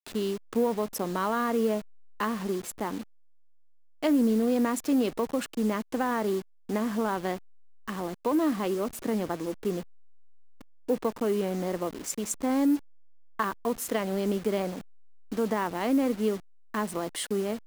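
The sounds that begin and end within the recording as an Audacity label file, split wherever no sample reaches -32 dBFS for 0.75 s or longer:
4.030000	9.810000	sound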